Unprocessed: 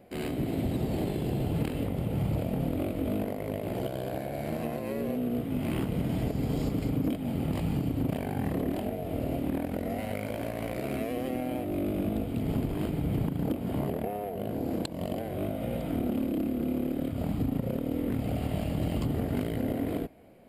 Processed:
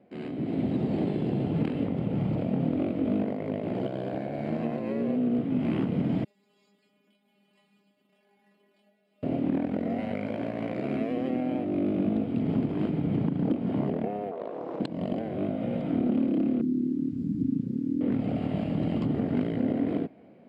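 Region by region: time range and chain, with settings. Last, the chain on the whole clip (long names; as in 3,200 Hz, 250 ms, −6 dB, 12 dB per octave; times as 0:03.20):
0:06.24–0:09.23: first difference + stiff-string resonator 200 Hz, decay 0.31 s, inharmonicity 0.002
0:14.31–0:14.80: high-pass filter 460 Hz 24 dB per octave + spectral tilt −2.5 dB per octave + highs frequency-modulated by the lows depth 0.37 ms
0:16.61–0:18.01: elliptic band-stop filter 320–5,800 Hz + low-shelf EQ 87 Hz −6.5 dB + bit-depth reduction 10 bits, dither none
whole clip: Chebyshev band-pass filter 230–5,600 Hz, order 2; bass and treble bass +9 dB, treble −13 dB; automatic gain control gain up to 6.5 dB; level −5.5 dB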